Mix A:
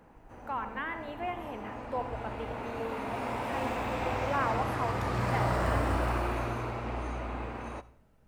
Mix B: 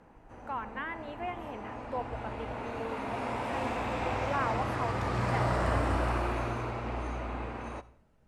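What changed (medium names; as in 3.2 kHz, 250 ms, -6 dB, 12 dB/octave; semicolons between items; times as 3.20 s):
speech: send -8.5 dB; master: add low-pass 10 kHz 12 dB/octave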